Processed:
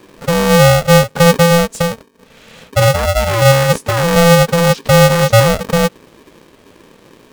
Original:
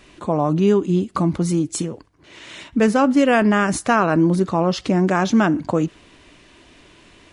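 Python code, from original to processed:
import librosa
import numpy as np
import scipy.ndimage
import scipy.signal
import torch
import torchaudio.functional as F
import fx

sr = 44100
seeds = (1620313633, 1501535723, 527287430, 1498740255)

y = fx.low_shelf_res(x, sr, hz=260.0, db=13.5, q=1.5)
y = y * np.sign(np.sin(2.0 * np.pi * 340.0 * np.arange(len(y)) / sr))
y = y * 10.0 ** (-3.5 / 20.0)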